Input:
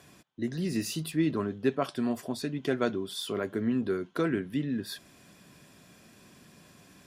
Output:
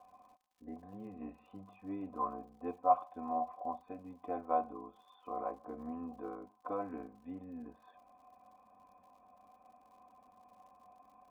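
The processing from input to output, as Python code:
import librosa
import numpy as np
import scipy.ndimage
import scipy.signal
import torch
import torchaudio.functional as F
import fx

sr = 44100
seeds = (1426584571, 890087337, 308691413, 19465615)

y = fx.formant_cascade(x, sr, vowel='a')
y = fx.dmg_crackle(y, sr, seeds[0], per_s=96.0, level_db=-70.0)
y = fx.stretch_grains(y, sr, factor=1.6, grain_ms=21.0)
y = y * 10.0 ** (11.0 / 20.0)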